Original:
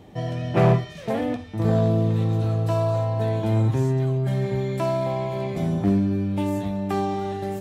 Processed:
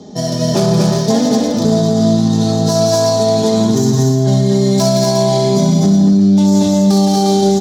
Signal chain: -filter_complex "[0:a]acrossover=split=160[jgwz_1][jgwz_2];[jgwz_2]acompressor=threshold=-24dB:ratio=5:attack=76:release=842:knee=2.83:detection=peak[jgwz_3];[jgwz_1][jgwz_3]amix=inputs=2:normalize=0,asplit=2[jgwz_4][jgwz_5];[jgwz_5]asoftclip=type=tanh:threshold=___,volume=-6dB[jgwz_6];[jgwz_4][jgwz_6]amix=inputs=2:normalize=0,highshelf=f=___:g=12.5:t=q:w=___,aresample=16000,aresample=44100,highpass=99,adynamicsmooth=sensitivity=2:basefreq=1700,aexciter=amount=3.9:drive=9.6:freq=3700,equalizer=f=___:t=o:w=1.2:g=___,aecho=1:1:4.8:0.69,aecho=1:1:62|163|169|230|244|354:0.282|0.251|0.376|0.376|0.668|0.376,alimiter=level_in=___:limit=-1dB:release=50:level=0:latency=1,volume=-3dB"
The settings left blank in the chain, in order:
-22dB, 3900, 1.5, 270, 5.5, 8.5dB